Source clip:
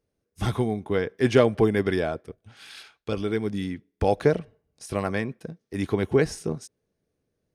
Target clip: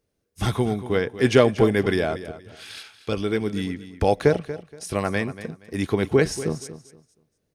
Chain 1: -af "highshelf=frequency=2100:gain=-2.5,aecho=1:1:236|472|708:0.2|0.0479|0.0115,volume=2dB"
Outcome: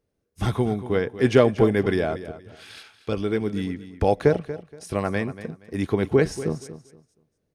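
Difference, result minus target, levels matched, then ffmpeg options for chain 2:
4,000 Hz band −4.5 dB
-af "highshelf=frequency=2100:gain=4,aecho=1:1:236|472|708:0.2|0.0479|0.0115,volume=2dB"

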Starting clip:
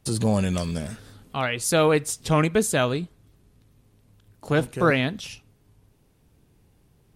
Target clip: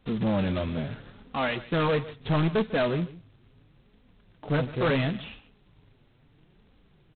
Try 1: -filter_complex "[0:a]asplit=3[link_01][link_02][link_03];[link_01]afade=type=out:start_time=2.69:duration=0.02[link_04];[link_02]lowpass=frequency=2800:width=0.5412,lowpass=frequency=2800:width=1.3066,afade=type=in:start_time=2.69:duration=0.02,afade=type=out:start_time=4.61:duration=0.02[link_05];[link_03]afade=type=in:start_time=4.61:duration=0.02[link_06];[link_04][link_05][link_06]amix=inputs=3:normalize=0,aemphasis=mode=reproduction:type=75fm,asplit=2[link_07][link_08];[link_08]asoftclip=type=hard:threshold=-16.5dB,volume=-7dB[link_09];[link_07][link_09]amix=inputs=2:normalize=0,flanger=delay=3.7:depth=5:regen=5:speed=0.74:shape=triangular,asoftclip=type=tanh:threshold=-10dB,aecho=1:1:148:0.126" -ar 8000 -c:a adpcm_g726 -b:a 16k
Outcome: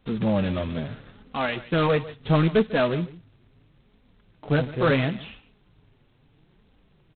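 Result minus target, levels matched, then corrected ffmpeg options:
soft clipping: distortion −11 dB
-filter_complex "[0:a]asplit=3[link_01][link_02][link_03];[link_01]afade=type=out:start_time=2.69:duration=0.02[link_04];[link_02]lowpass=frequency=2800:width=0.5412,lowpass=frequency=2800:width=1.3066,afade=type=in:start_time=2.69:duration=0.02,afade=type=out:start_time=4.61:duration=0.02[link_05];[link_03]afade=type=in:start_time=4.61:duration=0.02[link_06];[link_04][link_05][link_06]amix=inputs=3:normalize=0,aemphasis=mode=reproduction:type=75fm,asplit=2[link_07][link_08];[link_08]asoftclip=type=hard:threshold=-16.5dB,volume=-7dB[link_09];[link_07][link_09]amix=inputs=2:normalize=0,flanger=delay=3.7:depth=5:regen=5:speed=0.74:shape=triangular,asoftclip=type=tanh:threshold=-20dB,aecho=1:1:148:0.126" -ar 8000 -c:a adpcm_g726 -b:a 16k

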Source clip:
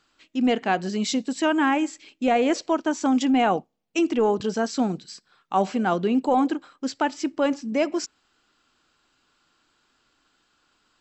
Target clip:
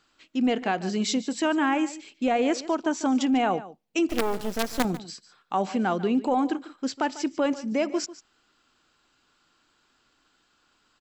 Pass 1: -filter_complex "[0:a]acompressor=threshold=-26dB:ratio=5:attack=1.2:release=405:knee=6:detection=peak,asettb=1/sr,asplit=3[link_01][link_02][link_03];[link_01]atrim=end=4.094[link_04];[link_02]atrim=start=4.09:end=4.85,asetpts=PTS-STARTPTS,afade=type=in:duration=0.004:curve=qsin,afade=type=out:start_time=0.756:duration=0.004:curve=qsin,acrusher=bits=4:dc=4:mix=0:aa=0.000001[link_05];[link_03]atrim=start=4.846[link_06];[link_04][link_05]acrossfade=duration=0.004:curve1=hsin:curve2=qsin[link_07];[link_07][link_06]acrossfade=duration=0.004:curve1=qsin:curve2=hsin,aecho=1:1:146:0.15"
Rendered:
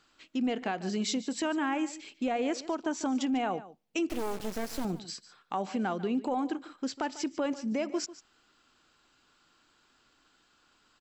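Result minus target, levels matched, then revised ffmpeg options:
downward compressor: peak gain reduction +7.5 dB
-filter_complex "[0:a]acompressor=threshold=-16.5dB:ratio=5:attack=1.2:release=405:knee=6:detection=peak,asettb=1/sr,asplit=3[link_01][link_02][link_03];[link_01]atrim=end=4.094[link_04];[link_02]atrim=start=4.09:end=4.85,asetpts=PTS-STARTPTS,afade=type=in:duration=0.004:curve=qsin,afade=type=out:start_time=0.756:duration=0.004:curve=qsin,acrusher=bits=4:dc=4:mix=0:aa=0.000001[link_05];[link_03]atrim=start=4.846[link_06];[link_04][link_05]acrossfade=duration=0.004:curve1=hsin:curve2=qsin[link_07];[link_07][link_06]acrossfade=duration=0.004:curve1=qsin:curve2=hsin,aecho=1:1:146:0.15"

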